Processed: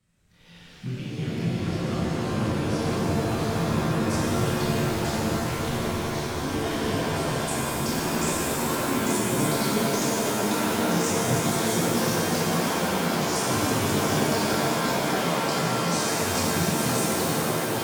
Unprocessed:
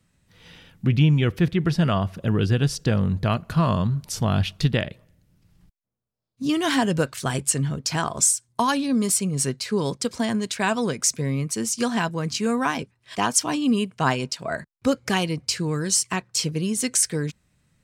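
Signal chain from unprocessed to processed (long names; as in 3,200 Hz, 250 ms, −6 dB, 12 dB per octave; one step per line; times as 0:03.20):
downward compressor, threshold −27 dBFS, peak gain reduction 13 dB
multi-voice chorus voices 6, 0.89 Hz, delay 27 ms, depth 3 ms
delay with pitch and tempo change per echo 168 ms, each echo −3 semitones, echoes 3
on a send: delay with a band-pass on its return 503 ms, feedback 82%, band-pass 710 Hz, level −4 dB
on the sum: reverb with rising layers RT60 3.8 s, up +7 semitones, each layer −2 dB, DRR −5 dB
level −3.5 dB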